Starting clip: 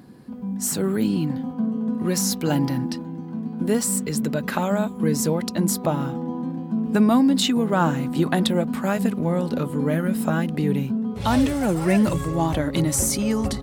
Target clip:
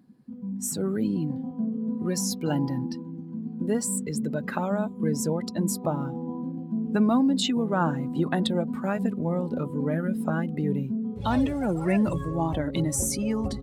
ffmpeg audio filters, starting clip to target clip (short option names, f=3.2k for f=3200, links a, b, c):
-af "afftdn=nr=14:nf=-32,volume=-4.5dB"